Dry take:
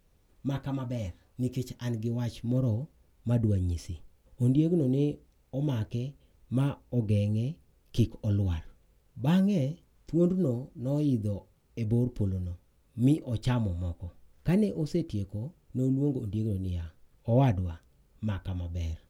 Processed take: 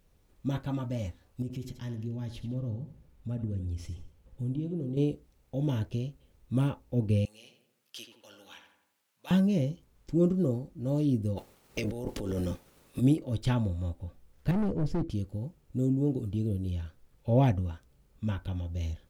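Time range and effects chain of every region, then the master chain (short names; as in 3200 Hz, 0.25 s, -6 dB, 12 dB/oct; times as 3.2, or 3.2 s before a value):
1.42–4.97 tone controls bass +4 dB, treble -4 dB + compressor 2:1, threshold -39 dBFS + feedback echo 80 ms, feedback 35%, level -11 dB
7.25–9.31 HPF 1300 Hz + darkening echo 85 ms, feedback 56%, low-pass 1900 Hz, level -6 dB
11.36–13 spectral limiter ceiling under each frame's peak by 20 dB + negative-ratio compressor -33 dBFS
14.51–15.1 hard clip -31.5 dBFS + tilt -2.5 dB/oct
whole clip: dry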